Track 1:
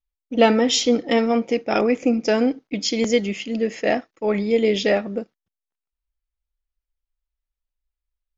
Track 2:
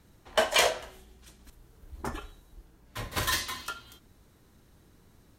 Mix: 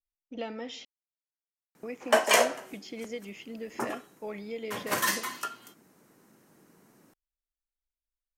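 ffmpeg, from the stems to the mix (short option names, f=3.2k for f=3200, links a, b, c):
-filter_complex "[0:a]acrossover=split=550|2600[a][b][c];[a]acompressor=threshold=-28dB:ratio=4[d];[b]acompressor=threshold=-27dB:ratio=4[e];[c]acompressor=threshold=-40dB:ratio=4[f];[d][e][f]amix=inputs=3:normalize=0,volume=-12.5dB,asplit=3[g][h][i];[g]atrim=end=0.85,asetpts=PTS-STARTPTS,afade=t=out:st=0.846:d=0.004:c=hsin[j];[h]atrim=start=0.85:end=1.83,asetpts=PTS-STARTPTS,volume=0[k];[i]atrim=start=1.83,asetpts=PTS-STARTPTS,afade=t=in:d=0.004:c=hsin[l];[j][k][l]concat=n=3:v=0:a=1[m];[1:a]highpass=f=170:w=0.5412,highpass=f=170:w=1.3066,equalizer=f=3.7k:t=o:w=0.6:g=-10,adelay=1750,volume=3dB[n];[m][n]amix=inputs=2:normalize=0"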